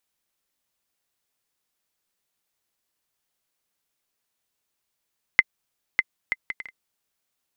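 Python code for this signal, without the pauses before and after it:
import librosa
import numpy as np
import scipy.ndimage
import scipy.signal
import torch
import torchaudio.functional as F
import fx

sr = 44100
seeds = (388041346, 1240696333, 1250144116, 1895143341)

y = fx.bouncing_ball(sr, first_gap_s=0.6, ratio=0.55, hz=2060.0, decay_ms=38.0, level_db=-1.5)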